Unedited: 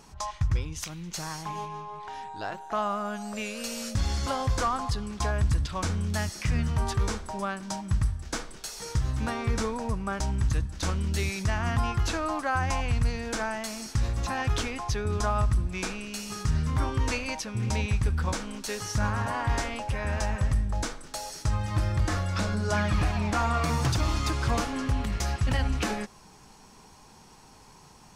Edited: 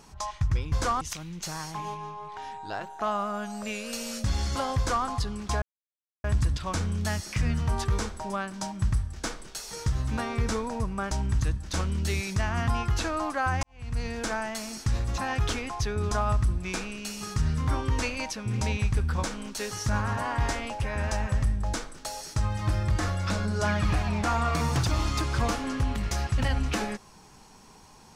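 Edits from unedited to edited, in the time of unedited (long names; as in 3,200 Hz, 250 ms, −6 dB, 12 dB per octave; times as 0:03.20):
0:04.48–0:04.77: duplicate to 0:00.72
0:05.33: splice in silence 0.62 s
0:12.72–0:13.15: fade in quadratic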